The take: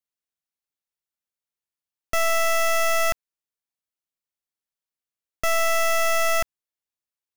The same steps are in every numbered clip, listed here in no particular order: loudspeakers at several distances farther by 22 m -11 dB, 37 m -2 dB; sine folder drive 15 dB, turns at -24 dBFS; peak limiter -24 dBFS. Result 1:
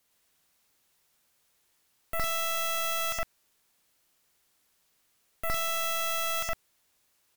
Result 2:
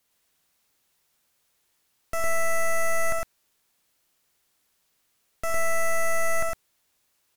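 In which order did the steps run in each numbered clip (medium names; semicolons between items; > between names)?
peak limiter > loudspeakers at several distances > sine folder; sine folder > peak limiter > loudspeakers at several distances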